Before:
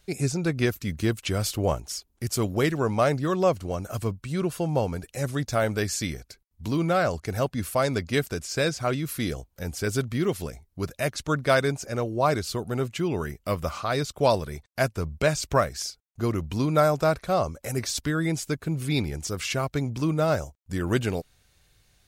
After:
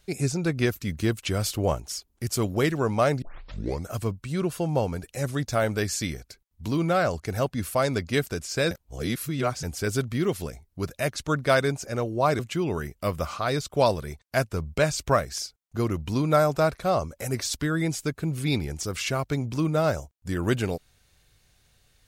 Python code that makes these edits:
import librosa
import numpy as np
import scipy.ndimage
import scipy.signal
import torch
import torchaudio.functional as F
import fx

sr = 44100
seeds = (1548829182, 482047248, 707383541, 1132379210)

y = fx.edit(x, sr, fx.tape_start(start_s=3.22, length_s=0.66),
    fx.reverse_span(start_s=8.71, length_s=0.92),
    fx.cut(start_s=12.39, length_s=0.44), tone=tone)